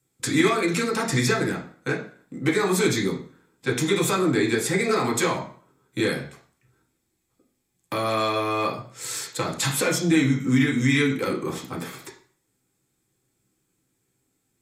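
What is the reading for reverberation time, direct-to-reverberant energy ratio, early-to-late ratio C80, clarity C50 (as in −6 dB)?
0.50 s, −2.0 dB, 13.5 dB, 8.5 dB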